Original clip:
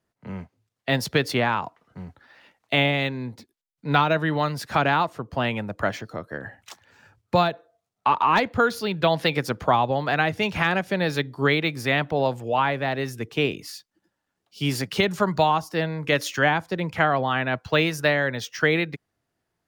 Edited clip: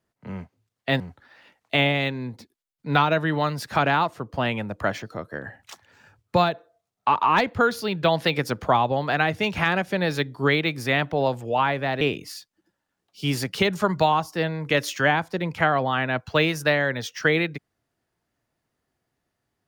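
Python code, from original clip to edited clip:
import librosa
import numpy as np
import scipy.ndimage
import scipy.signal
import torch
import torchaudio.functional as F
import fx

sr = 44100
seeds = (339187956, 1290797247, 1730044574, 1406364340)

y = fx.edit(x, sr, fx.cut(start_s=1.0, length_s=0.99),
    fx.cut(start_s=13.0, length_s=0.39), tone=tone)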